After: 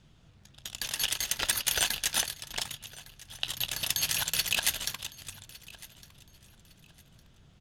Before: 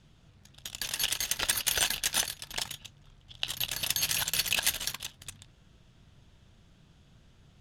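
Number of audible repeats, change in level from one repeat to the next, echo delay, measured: 2, −11.5 dB, 1,158 ms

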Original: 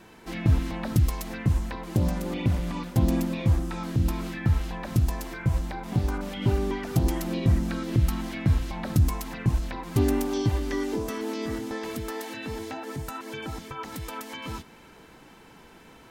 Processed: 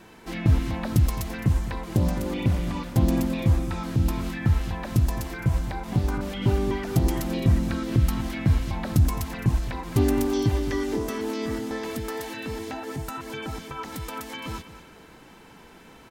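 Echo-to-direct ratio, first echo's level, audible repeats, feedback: −13.5 dB, −14.0 dB, 2, 23%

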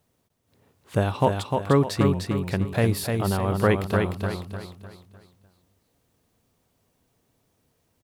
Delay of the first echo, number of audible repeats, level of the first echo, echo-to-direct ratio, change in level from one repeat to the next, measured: 302 ms, 4, −4.5 dB, −4.0 dB, −8.0 dB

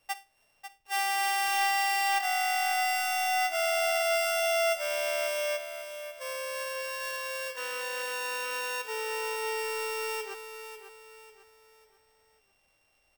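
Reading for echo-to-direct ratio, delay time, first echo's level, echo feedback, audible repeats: −9.5 dB, 545 ms, −10.0 dB, 39%, 4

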